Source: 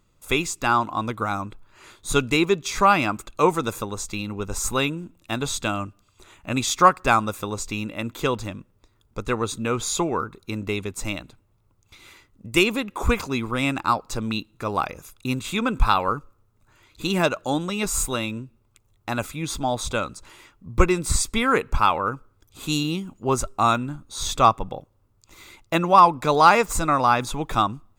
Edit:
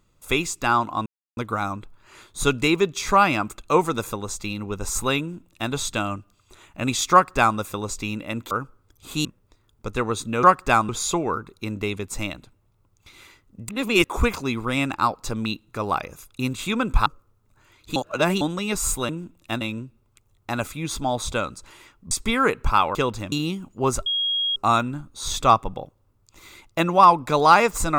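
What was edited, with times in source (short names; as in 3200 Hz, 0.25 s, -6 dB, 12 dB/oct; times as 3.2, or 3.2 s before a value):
1.06 insert silence 0.31 s
4.89–5.41 copy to 18.2
6.81–7.27 copy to 9.75
8.2–8.57 swap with 22.03–22.77
12.55–12.9 reverse
15.92–16.17 cut
17.07–17.52 reverse
20.7–21.19 cut
23.51 add tone 3280 Hz -20.5 dBFS 0.50 s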